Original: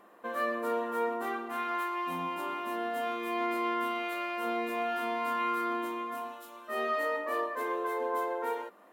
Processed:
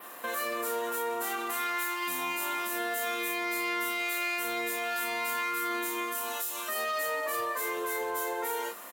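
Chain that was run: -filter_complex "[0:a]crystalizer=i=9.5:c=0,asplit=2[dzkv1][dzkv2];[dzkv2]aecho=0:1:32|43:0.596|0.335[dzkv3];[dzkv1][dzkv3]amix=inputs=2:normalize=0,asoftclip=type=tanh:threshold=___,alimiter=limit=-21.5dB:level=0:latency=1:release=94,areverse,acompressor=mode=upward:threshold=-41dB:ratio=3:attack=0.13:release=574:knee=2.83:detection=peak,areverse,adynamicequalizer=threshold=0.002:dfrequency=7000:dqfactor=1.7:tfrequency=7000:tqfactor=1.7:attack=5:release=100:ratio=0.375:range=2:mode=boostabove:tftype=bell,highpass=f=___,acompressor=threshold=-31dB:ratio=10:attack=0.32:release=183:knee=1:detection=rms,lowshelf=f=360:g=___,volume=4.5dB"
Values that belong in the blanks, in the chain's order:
-17.5dB, 46, -2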